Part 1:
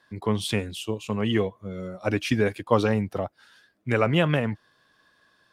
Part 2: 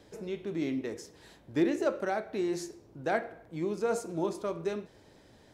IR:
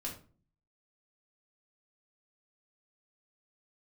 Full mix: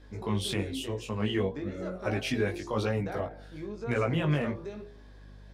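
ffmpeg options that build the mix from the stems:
-filter_complex "[0:a]alimiter=limit=-15.5dB:level=0:latency=1:release=21,volume=-0.5dB[link_01];[1:a]lowpass=5400,bandreject=frequency=2900:width=14,acompressor=threshold=-33dB:ratio=6,volume=1dB[link_02];[link_01][link_02]amix=inputs=2:normalize=0,bandreject=frequency=58.53:width_type=h:width=4,bandreject=frequency=117.06:width_type=h:width=4,bandreject=frequency=175.59:width_type=h:width=4,bandreject=frequency=234.12:width_type=h:width=4,bandreject=frequency=292.65:width_type=h:width=4,bandreject=frequency=351.18:width_type=h:width=4,bandreject=frequency=409.71:width_type=h:width=4,bandreject=frequency=468.24:width_type=h:width=4,bandreject=frequency=526.77:width_type=h:width=4,bandreject=frequency=585.3:width_type=h:width=4,bandreject=frequency=643.83:width_type=h:width=4,bandreject=frequency=702.36:width_type=h:width=4,bandreject=frequency=760.89:width_type=h:width=4,bandreject=frequency=819.42:width_type=h:width=4,bandreject=frequency=877.95:width_type=h:width=4,aeval=exprs='val(0)+0.00398*(sin(2*PI*50*n/s)+sin(2*PI*2*50*n/s)/2+sin(2*PI*3*50*n/s)/3+sin(2*PI*4*50*n/s)/4+sin(2*PI*5*50*n/s)/5)':channel_layout=same,flanger=delay=16.5:depth=4.7:speed=1"

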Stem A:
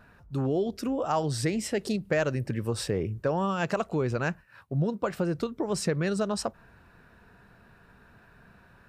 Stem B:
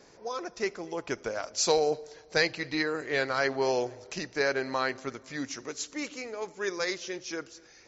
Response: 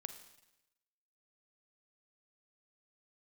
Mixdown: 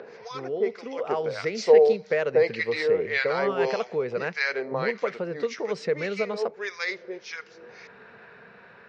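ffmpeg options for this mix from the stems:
-filter_complex "[0:a]dynaudnorm=framelen=420:gausssize=5:maxgain=4.5dB,volume=-7dB[link_01];[1:a]acrossover=split=1000[link_02][link_03];[link_02]aeval=exprs='val(0)*(1-1/2+1/2*cos(2*PI*1.7*n/s))':channel_layout=same[link_04];[link_03]aeval=exprs='val(0)*(1-1/2-1/2*cos(2*PI*1.7*n/s))':channel_layout=same[link_05];[link_04][link_05]amix=inputs=2:normalize=0,volume=2dB,asplit=2[link_06][link_07];[link_07]volume=-13dB[link_08];[2:a]atrim=start_sample=2205[link_09];[link_08][link_09]afir=irnorm=-1:irlink=0[link_10];[link_01][link_06][link_10]amix=inputs=3:normalize=0,acompressor=mode=upward:threshold=-37dB:ratio=2.5,highpass=230,equalizer=frequency=300:width_type=q:width=4:gain=-9,equalizer=frequency=460:width_type=q:width=4:gain=10,equalizer=frequency=2100:width_type=q:width=4:gain=8,lowpass=frequency=4900:width=0.5412,lowpass=frequency=4900:width=1.3066"

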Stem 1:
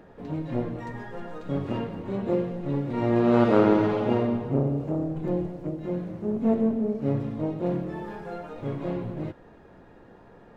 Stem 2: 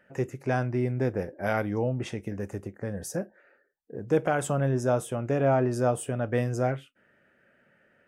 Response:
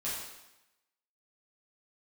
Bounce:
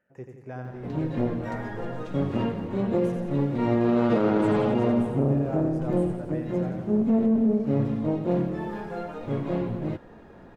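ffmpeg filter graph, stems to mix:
-filter_complex "[0:a]equalizer=frequency=220:width_type=o:width=0.21:gain=4.5,alimiter=limit=-17dB:level=0:latency=1:release=44,adelay=650,volume=2.5dB[link_01];[1:a]highshelf=frequency=2700:gain=-10,volume=-11.5dB,asplit=2[link_02][link_03];[link_03]volume=-6dB,aecho=0:1:87|174|261|348|435|522|609|696|783:1|0.58|0.336|0.195|0.113|0.0656|0.0381|0.0221|0.0128[link_04];[link_01][link_02][link_04]amix=inputs=3:normalize=0"

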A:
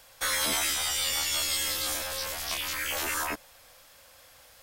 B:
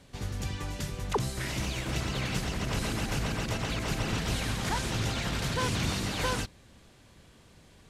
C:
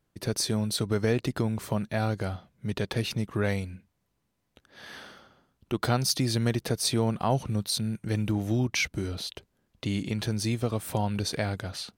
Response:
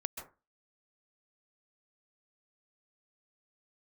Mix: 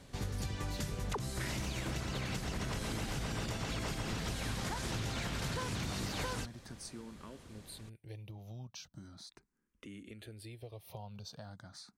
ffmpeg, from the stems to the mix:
-filter_complex "[0:a]lowpass=7500,acompressor=threshold=-34dB:ratio=6,adelay=2400,volume=-10dB[link_01];[1:a]equalizer=frequency=2800:width_type=o:width=0.77:gain=-2.5,alimiter=limit=-23dB:level=0:latency=1:release=330,volume=0.5dB[link_02];[2:a]acompressor=threshold=-37dB:ratio=2.5,asplit=2[link_03][link_04];[link_04]afreqshift=0.39[link_05];[link_03][link_05]amix=inputs=2:normalize=1,volume=-9dB[link_06];[link_01][link_02][link_06]amix=inputs=3:normalize=0,acompressor=threshold=-34dB:ratio=6"

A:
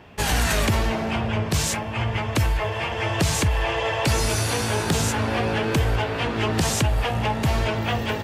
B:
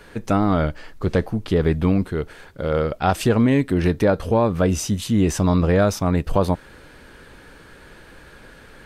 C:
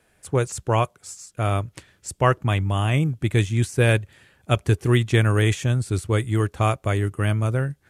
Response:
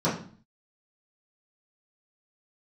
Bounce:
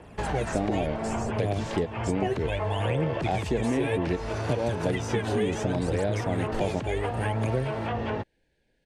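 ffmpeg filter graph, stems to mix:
-filter_complex "[0:a]lowpass=frequency=1100:poles=1,alimiter=limit=-18.5dB:level=0:latency=1:release=24,volume=0.5dB[link_01];[1:a]adelay=250,volume=1dB[link_02];[2:a]aphaser=in_gain=1:out_gain=1:delay=2.8:decay=0.79:speed=0.66:type=triangular,volume=-0.5dB,asplit=2[link_03][link_04];[link_04]apad=whole_len=401723[link_05];[link_02][link_05]sidechaingate=range=-27dB:threshold=-38dB:ratio=16:detection=peak[link_06];[link_06][link_03]amix=inputs=2:normalize=0,asuperstop=centerf=1200:order=4:qfactor=1.3,alimiter=limit=-7dB:level=0:latency=1:release=142,volume=0dB[link_07];[link_01][link_07]amix=inputs=2:normalize=0,lowpass=8400,acrossover=split=280|1800[link_08][link_09][link_10];[link_08]acompressor=threshold=-32dB:ratio=4[link_11];[link_09]acompressor=threshold=-27dB:ratio=4[link_12];[link_10]acompressor=threshold=-43dB:ratio=4[link_13];[link_11][link_12][link_13]amix=inputs=3:normalize=0"

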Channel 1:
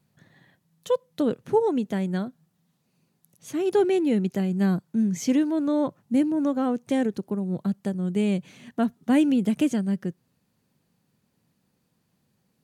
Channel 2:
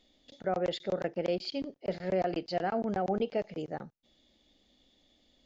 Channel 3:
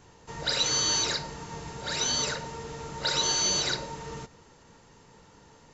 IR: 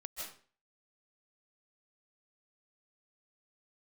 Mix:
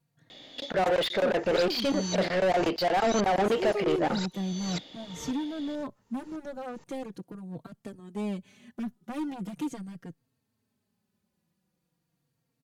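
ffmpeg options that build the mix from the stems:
-filter_complex "[0:a]asoftclip=type=hard:threshold=-22dB,asplit=2[link_01][link_02];[link_02]adelay=3.8,afreqshift=-0.41[link_03];[link_01][link_03]amix=inputs=2:normalize=1,volume=-5dB[link_04];[1:a]equalizer=frequency=3400:width_type=o:width=0.77:gain=2.5,asplit=2[link_05][link_06];[link_06]highpass=frequency=720:poles=1,volume=27dB,asoftclip=type=tanh:threshold=-20dB[link_07];[link_05][link_07]amix=inputs=2:normalize=0,lowpass=frequency=2300:poles=1,volume=-6dB,adelay=300,volume=2dB[link_08];[2:a]acompressor=threshold=-39dB:ratio=2,aeval=exprs='val(0)*pow(10,-33*if(lt(mod(-1.9*n/s,1),2*abs(-1.9)/1000),1-mod(-1.9*n/s,1)/(2*abs(-1.9)/1000),(mod(-1.9*n/s,1)-2*abs(-1.9)/1000)/(1-2*abs(-1.9)/1000))/20)':channel_layout=same,adelay=1100,volume=2.5dB[link_09];[link_04][link_08][link_09]amix=inputs=3:normalize=0"

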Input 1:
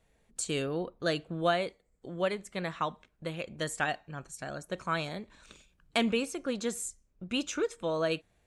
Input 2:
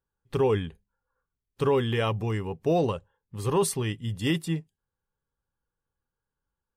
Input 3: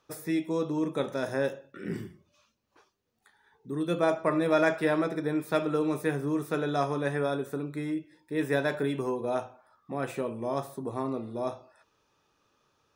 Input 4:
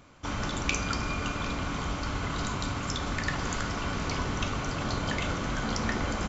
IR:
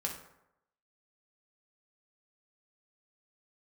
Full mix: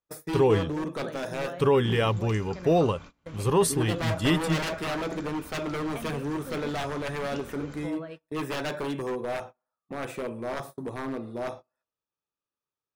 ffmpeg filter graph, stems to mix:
-filter_complex "[0:a]lowpass=2200,acompressor=threshold=-31dB:ratio=6,volume=-9dB,asplit=2[link_01][link_02];[link_02]volume=-7dB[link_03];[1:a]volume=2dB[link_04];[2:a]aeval=exprs='0.0501*(abs(mod(val(0)/0.0501+3,4)-2)-1)':channel_layout=same,volume=-0.5dB,asplit=2[link_05][link_06];[link_06]volume=-17dB[link_07];[3:a]adelay=1600,volume=-19.5dB,asplit=2[link_08][link_09];[link_09]volume=-7.5dB[link_10];[4:a]atrim=start_sample=2205[link_11];[link_03][link_07][link_10]amix=inputs=3:normalize=0[link_12];[link_12][link_11]afir=irnorm=-1:irlink=0[link_13];[link_01][link_04][link_05][link_08][link_13]amix=inputs=5:normalize=0,agate=range=-26dB:threshold=-41dB:ratio=16:detection=peak"

